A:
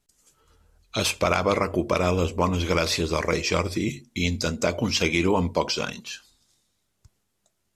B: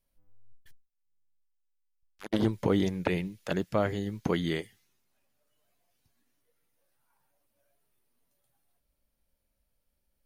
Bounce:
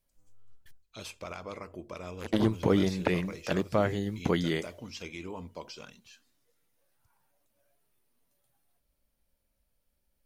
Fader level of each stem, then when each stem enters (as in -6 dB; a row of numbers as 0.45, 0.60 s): -19.0, +1.0 dB; 0.00, 0.00 s